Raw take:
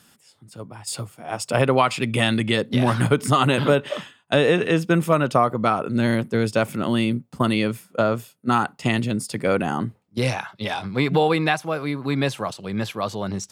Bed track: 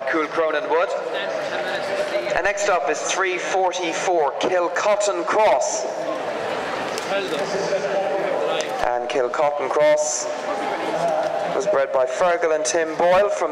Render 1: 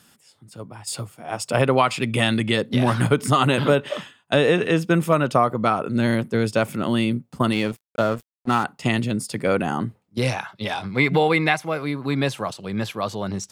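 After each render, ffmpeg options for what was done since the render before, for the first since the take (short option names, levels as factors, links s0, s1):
-filter_complex "[0:a]asettb=1/sr,asplit=3[s0][s1][s2];[s0]atrim=end=7.524[s3];[s1]atrim=start=7.52:end=8.64,asetpts=PTS-STARTPTS,afade=t=in:d=0.004:c=qsin,afade=t=out:st=1.116:d=0.004:c=qsin,aeval=exprs='sgn(val(0))*max(abs(val(0))-0.0178,0)':c=same[s4];[s2]atrim=start=8.636[s5];[s3][s4]acrossfade=d=0.004:c1=hsin:c2=qsin[s6];[s6][s5]acrossfade=d=0.004:c1=qsin:c2=hsin,asettb=1/sr,asplit=3[s7][s8][s9];[s7]atrim=end=10.914[s10];[s8]atrim=start=10.91:end=11.81,asetpts=PTS-STARTPTS,afade=t=in:d=0.004:c=qsin,afade=t=out:st=0.896:d=0.004:c=qsin,equalizer=f=2100:w=8:g=11[s11];[s9]atrim=start=11.806[s12];[s10][s11]acrossfade=d=0.004:c1=hsin:c2=qsin[s13];[s13][s12]acrossfade=d=0.004:c1=qsin:c2=hsin"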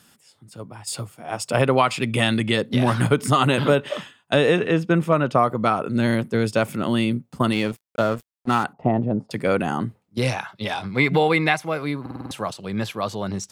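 -filter_complex "[0:a]asettb=1/sr,asplit=3[s0][s1][s2];[s0]atrim=end=4.594[s3];[s1]atrim=start=4.59:end=5.38,asetpts=PTS-STARTPTS,afade=t=in:d=0.004:c=qsin,afade=t=out:st=0.786:d=0.004:c=qsin,lowpass=f=2900:p=1[s4];[s2]atrim=start=5.376[s5];[s3][s4]acrossfade=d=0.004:c1=hsin:c2=qsin[s6];[s6][s5]acrossfade=d=0.004:c1=qsin:c2=hsin,asettb=1/sr,asplit=3[s7][s8][s9];[s7]atrim=end=8.734[s10];[s8]atrim=start=8.73:end=9.31,asetpts=PTS-STARTPTS,afade=t=in:d=0.004:c=qsin,afade=t=out:st=0.576:d=0.004:c=qsin,lowpass=f=740:t=q:w=3[s11];[s9]atrim=start=9.306[s12];[s10][s11]acrossfade=d=0.004:c1=hsin:c2=qsin[s13];[s13][s12]acrossfade=d=0.004:c1=qsin:c2=hsin,asplit=7[s14][s15][s16][s17][s18][s19][s20];[s14]atrim=end=12.062[s21];[s15]atrim=start=12.008:end=12.062[s22];[s16]atrim=start=12.008:end=12.062[s23];[s17]atrim=start=12.008:end=12.062[s24];[s18]atrim=start=12.008:end=12.062[s25];[s19]atrim=start=12.008:end=12.062[s26];[s20]atrim=start=12.308[s27];[s21][s22]acrossfade=d=0.004:c1=hsin:c2=hsin[s28];[s28][s23]acrossfade=d=0.004:c1=hsin:c2=hsin[s29];[s29][s24]acrossfade=d=0.004:c1=hsin:c2=hsin[s30];[s30][s25]acrossfade=d=0.004:c1=hsin:c2=hsin[s31];[s31][s26]acrossfade=d=0.004:c1=hsin:c2=hsin[s32];[s32][s27]acrossfade=d=0.004:c1=hsin:c2=hsin"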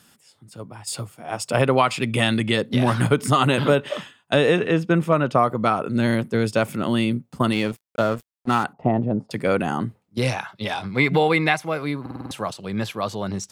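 -af anull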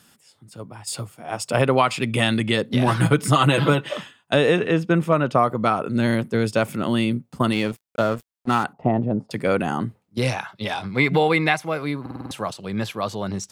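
-filter_complex "[0:a]asettb=1/sr,asplit=3[s0][s1][s2];[s0]atrim=end=2.874[s3];[s1]atrim=start=2.87:end=3.93,asetpts=PTS-STARTPTS,afade=t=in:d=0.004:c=qsin,afade=t=out:st=1.056:d=0.004:c=qsin,aecho=1:1:6.1:0.65,atrim=end_sample=46746[s4];[s2]atrim=start=3.926[s5];[s3][s4]acrossfade=d=0.004:c1=hsin:c2=qsin[s6];[s6][s5]acrossfade=d=0.004:c1=qsin:c2=hsin"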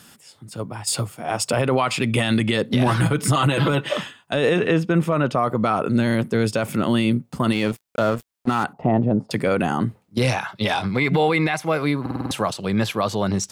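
-filter_complex "[0:a]asplit=2[s0][s1];[s1]acompressor=threshold=0.0501:ratio=6,volume=1.26[s2];[s0][s2]amix=inputs=2:normalize=0,alimiter=limit=0.316:level=0:latency=1:release=18"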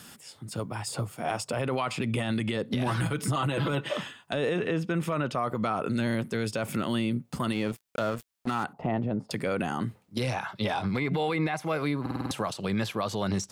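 -filter_complex "[0:a]acrossover=split=1400[s0][s1];[s0]alimiter=limit=0.0891:level=0:latency=1:release=306[s2];[s1]acompressor=threshold=0.0158:ratio=6[s3];[s2][s3]amix=inputs=2:normalize=0"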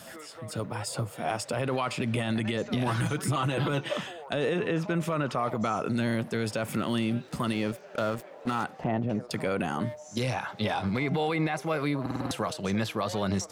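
-filter_complex "[1:a]volume=0.0562[s0];[0:a][s0]amix=inputs=2:normalize=0"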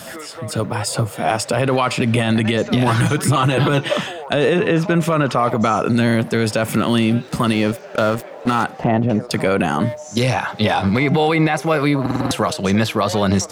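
-af "volume=3.98"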